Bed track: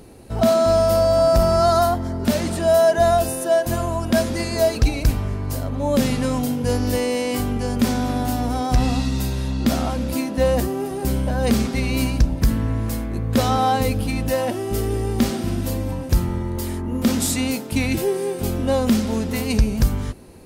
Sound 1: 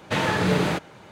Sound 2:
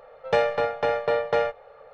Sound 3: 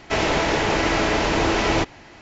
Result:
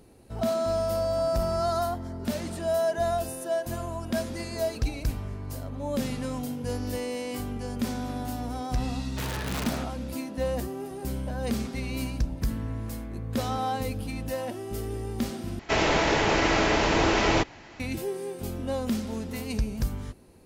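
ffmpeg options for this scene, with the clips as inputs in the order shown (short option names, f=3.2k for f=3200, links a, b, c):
-filter_complex "[0:a]volume=-10.5dB[a];[1:a]aeval=exprs='(mod(5.62*val(0)+1,2)-1)/5.62':c=same[b];[3:a]aresample=22050,aresample=44100[c];[a]asplit=2[d][e];[d]atrim=end=15.594[f];[c]atrim=end=2.21,asetpts=PTS-STARTPTS,volume=-2.5dB[g];[e]atrim=start=17.796[h];[b]atrim=end=1.11,asetpts=PTS-STARTPTS,volume=-12dB,afade=t=in:d=0.004:c=hsin,afade=t=out:st=1.106:d=0.004:c=hsin,adelay=399546S[i];[f][g]acrossfade=d=0.004:c1=hsin:c2=hsin[j];[j][h]acrossfade=d=0.004:c1=hsin:c2=hsin[k];[k][i]amix=inputs=2:normalize=0"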